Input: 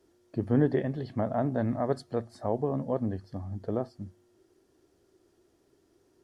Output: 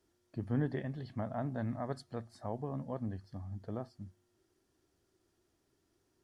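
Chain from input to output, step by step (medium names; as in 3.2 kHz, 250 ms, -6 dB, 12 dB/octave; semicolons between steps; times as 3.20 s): peaking EQ 430 Hz -8 dB 1.5 oct; trim -5 dB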